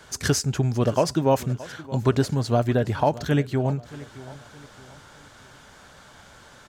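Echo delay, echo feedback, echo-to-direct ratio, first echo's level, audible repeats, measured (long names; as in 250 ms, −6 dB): 623 ms, 38%, −17.5 dB, −18.0 dB, 3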